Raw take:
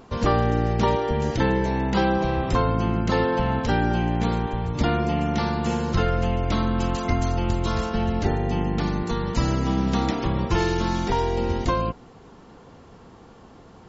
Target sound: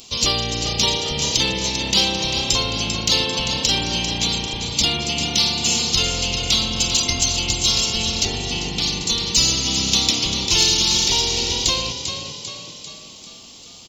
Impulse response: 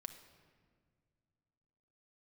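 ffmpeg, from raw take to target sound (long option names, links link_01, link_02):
-filter_complex "[0:a]asplit=7[link_01][link_02][link_03][link_04][link_05][link_06][link_07];[link_02]adelay=395,afreqshift=32,volume=-8.5dB[link_08];[link_03]adelay=790,afreqshift=64,volume=-14.2dB[link_09];[link_04]adelay=1185,afreqshift=96,volume=-19.9dB[link_10];[link_05]adelay=1580,afreqshift=128,volume=-25.5dB[link_11];[link_06]adelay=1975,afreqshift=160,volume=-31.2dB[link_12];[link_07]adelay=2370,afreqshift=192,volume=-36.9dB[link_13];[link_01][link_08][link_09][link_10][link_11][link_12][link_13]amix=inputs=7:normalize=0,asettb=1/sr,asplit=3[link_14][link_15][link_16];[link_14]atrim=end=8.254[link_17];[link_15]atrim=start=8.25:end=8.82,asetpts=PTS-STARTPTS,afade=type=in:duration=0.004:curve=qsin,afade=type=out:start_time=0.566:duration=0.004:curve=qsin,acrossover=split=4000[link_18][link_19];[link_19]acompressor=threshold=-50dB:ratio=4:attack=1:release=60[link_20];[link_18][link_20]amix=inputs=2:normalize=0[link_21];[link_16]atrim=start=8.816[link_22];[link_17][link_21]acrossfade=duration=0.004:curve1=hsin:curve2=qsin[link_23];[link_23][link_22]acrossfade=duration=0.004:curve1=qsin:curve2=hsin,aexciter=amount=10.4:drive=9.5:freq=2600,volume=-5.5dB"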